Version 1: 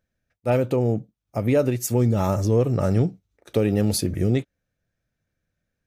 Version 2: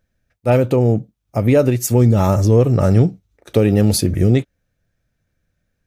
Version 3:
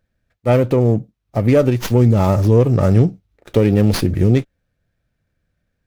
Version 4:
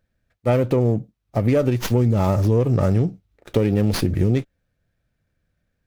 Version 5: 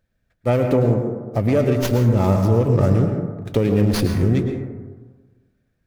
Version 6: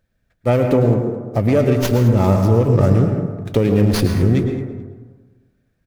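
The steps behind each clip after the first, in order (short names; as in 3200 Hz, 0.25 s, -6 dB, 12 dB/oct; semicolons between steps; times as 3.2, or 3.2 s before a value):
low shelf 81 Hz +6.5 dB; gain +6 dB
running maximum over 5 samples
compressor 4:1, threshold -13 dBFS, peak gain reduction 6 dB; gain -1.5 dB
plate-style reverb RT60 1.4 s, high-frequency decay 0.3×, pre-delay 95 ms, DRR 4 dB
feedback echo 0.215 s, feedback 23%, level -19 dB; gain +2.5 dB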